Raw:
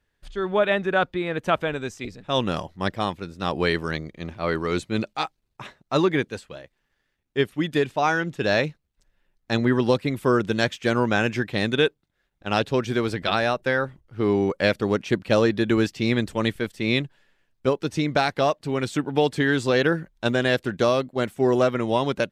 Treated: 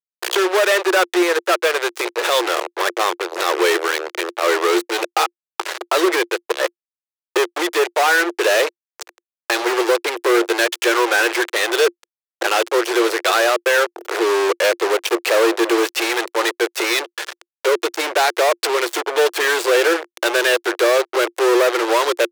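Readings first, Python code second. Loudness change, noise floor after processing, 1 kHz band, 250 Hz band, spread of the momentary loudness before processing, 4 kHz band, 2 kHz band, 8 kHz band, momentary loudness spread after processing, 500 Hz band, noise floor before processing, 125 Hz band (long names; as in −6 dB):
+6.0 dB, below −85 dBFS, +7.5 dB, 0.0 dB, 9 LU, +8.5 dB, +8.5 dB, +17.5 dB, 7 LU, +6.5 dB, −74 dBFS, below −40 dB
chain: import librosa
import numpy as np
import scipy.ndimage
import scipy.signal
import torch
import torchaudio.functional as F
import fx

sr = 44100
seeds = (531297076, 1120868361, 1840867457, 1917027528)

y = fx.gate_flip(x, sr, shuts_db=-26.0, range_db=-26)
y = fx.fuzz(y, sr, gain_db=61.0, gate_db=-57.0)
y = scipy.signal.sosfilt(scipy.signal.cheby1(6, 3, 340.0, 'highpass', fs=sr, output='sos'), y)
y = y * 10.0 ** (3.0 / 20.0)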